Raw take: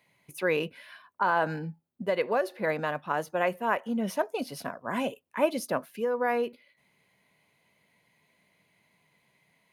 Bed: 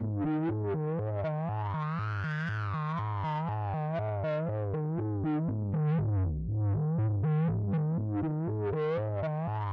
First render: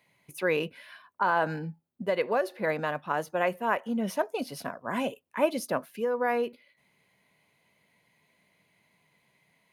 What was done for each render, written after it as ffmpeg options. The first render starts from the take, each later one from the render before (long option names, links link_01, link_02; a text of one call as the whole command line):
ffmpeg -i in.wav -af anull out.wav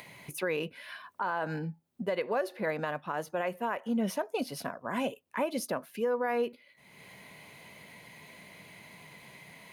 ffmpeg -i in.wav -af "alimiter=limit=-21.5dB:level=0:latency=1:release=147,acompressor=mode=upward:threshold=-36dB:ratio=2.5" out.wav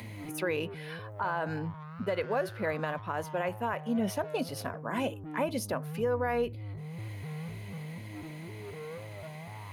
ffmpeg -i in.wav -i bed.wav -filter_complex "[1:a]volume=-11.5dB[link_01];[0:a][link_01]amix=inputs=2:normalize=0" out.wav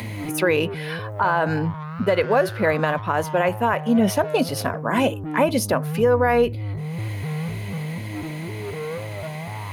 ffmpeg -i in.wav -af "volume=12dB" out.wav